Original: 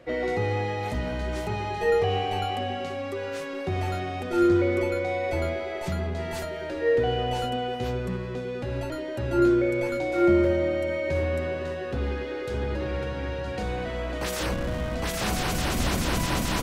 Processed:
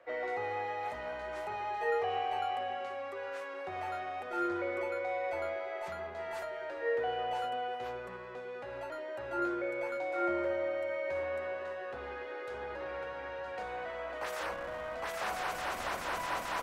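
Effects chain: three-band isolator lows -24 dB, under 550 Hz, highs -13 dB, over 2 kHz; trim -2 dB

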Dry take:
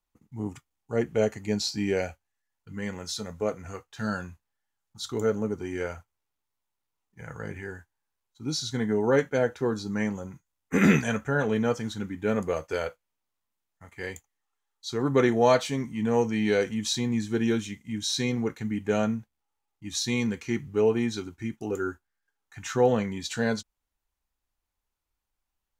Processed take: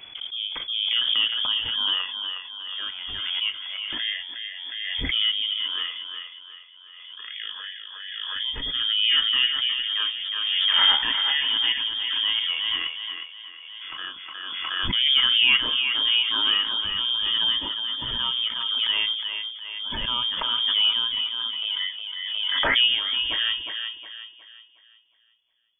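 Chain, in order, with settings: frequency inversion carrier 3.4 kHz; thinning echo 362 ms, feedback 39%, high-pass 290 Hz, level -6.5 dB; swell ahead of each attack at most 23 dB/s

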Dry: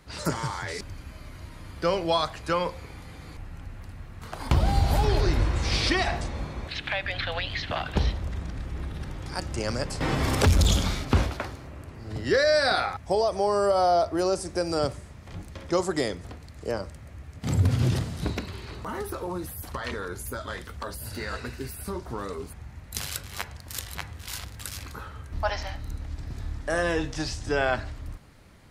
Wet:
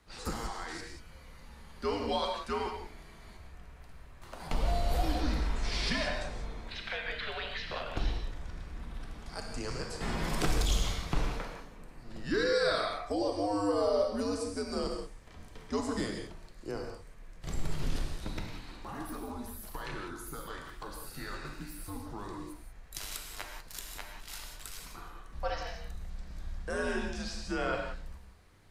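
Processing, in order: gated-style reverb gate 210 ms flat, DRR 1.5 dB; frequency shift -100 Hz; trim -9 dB

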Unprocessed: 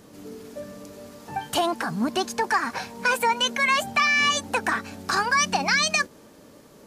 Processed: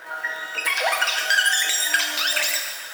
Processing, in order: rotating-head pitch shifter +5.5 st; resonant low shelf 430 Hz -8 dB, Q 1.5; compression 3:1, threshold -27 dBFS, peak gain reduction 7.5 dB; small resonant body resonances 240/680 Hz, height 12 dB, ringing for 20 ms; on a send: tape echo 336 ms, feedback 69%, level -13 dB, low-pass 4.2 kHz; on the sum: speed mistake 33 rpm record played at 78 rpm; pitch-shifted reverb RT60 1 s, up +12 st, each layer -8 dB, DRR 3.5 dB; trim +3.5 dB

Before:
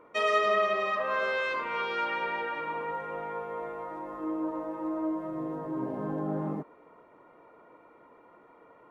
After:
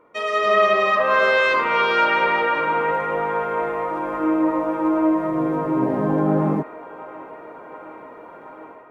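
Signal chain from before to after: level rider gain up to 13 dB; feedback echo behind a band-pass 721 ms, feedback 73%, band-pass 980 Hz, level -15 dB

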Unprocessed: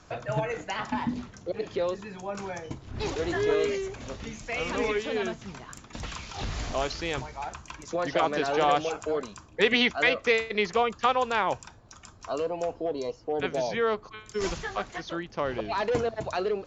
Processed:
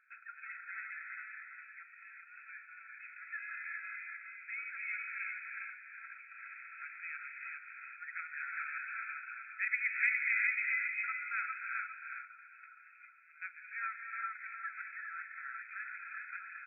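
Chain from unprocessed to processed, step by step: brick-wall FIR band-pass 1.3–2.6 kHz; feedback delay 409 ms, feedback 17%, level -4 dB; gated-style reverb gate 420 ms rising, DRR 1.5 dB; trim -7 dB

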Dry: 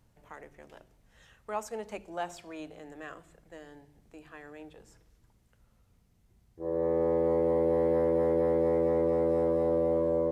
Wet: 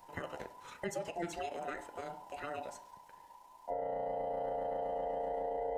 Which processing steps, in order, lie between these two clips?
every band turned upside down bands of 1 kHz; in parallel at +2 dB: peak limiter -27 dBFS, peak gain reduction 9 dB; on the sum: compression 4:1, threshold -38 dBFS, peak gain reduction 15 dB; granular stretch 0.56×, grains 69 ms; reverberation RT60 0.60 s, pre-delay 7 ms, DRR 11 dB; trim +2.5 dB

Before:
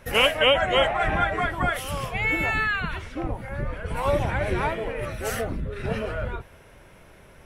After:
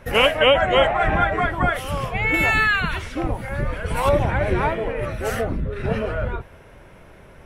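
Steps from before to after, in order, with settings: treble shelf 3 kHz -8 dB, from 2.34 s +5 dB, from 4.09 s -8 dB; trim +5 dB

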